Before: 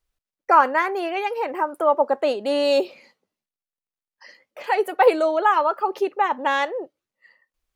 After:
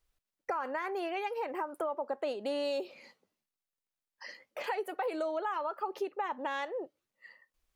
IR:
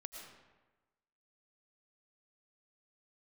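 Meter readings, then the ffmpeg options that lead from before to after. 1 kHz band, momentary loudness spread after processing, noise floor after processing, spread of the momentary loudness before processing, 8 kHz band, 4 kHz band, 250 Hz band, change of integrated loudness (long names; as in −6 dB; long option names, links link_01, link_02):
−16.0 dB, 12 LU, below −85 dBFS, 9 LU, can't be measured, −13.0 dB, −12.0 dB, −15.0 dB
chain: -af "alimiter=limit=-13dB:level=0:latency=1:release=72,acompressor=threshold=-36dB:ratio=3"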